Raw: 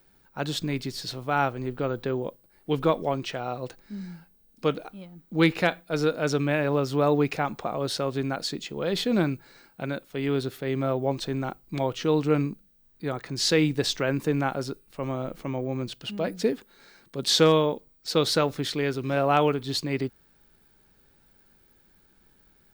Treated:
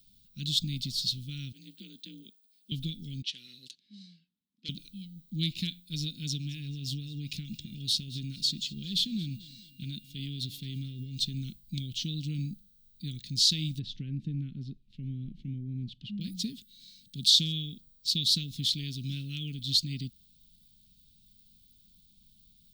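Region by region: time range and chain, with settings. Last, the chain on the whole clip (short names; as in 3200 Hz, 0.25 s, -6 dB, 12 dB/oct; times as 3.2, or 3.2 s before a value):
1.52–2.72 steep high-pass 330 Hz + ring modulator 92 Hz
3.22–4.69 low-pass opened by the level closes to 1000 Hz, open at -28.5 dBFS + HPF 450 Hz + core saturation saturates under 1500 Hz
6.37–11.35 compressor 4:1, threshold -26 dBFS + whine 2800 Hz -60 dBFS + feedback echo 0.219 s, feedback 47%, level -20 dB
13.79–16.21 LPF 1300 Hz + mismatched tape noise reduction encoder only
whole clip: compressor 2:1, threshold -25 dBFS; elliptic band-stop 210–3400 Hz, stop band 80 dB; bell 3700 Hz +7 dB 1.1 oct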